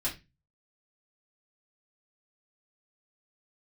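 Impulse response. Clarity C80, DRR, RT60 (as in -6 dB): 19.0 dB, -7.0 dB, 0.25 s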